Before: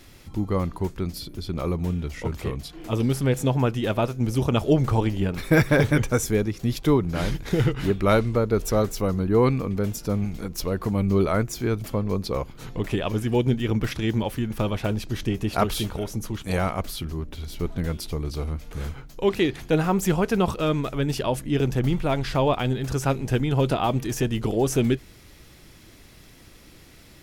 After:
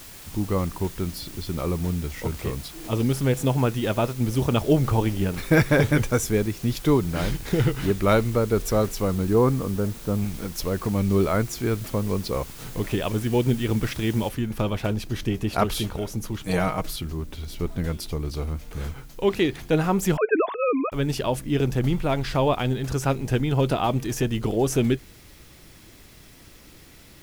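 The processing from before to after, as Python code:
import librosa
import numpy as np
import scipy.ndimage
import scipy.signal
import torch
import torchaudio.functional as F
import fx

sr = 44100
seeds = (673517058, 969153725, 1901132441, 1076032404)

y = fx.lowpass(x, sr, hz=1600.0, slope=24, at=(9.33, 10.17), fade=0.02)
y = fx.noise_floor_step(y, sr, seeds[0], at_s=14.29, before_db=-44, after_db=-57, tilt_db=0.0)
y = fx.comb(y, sr, ms=6.4, depth=0.65, at=(16.42, 16.96))
y = fx.sine_speech(y, sr, at=(20.17, 20.92))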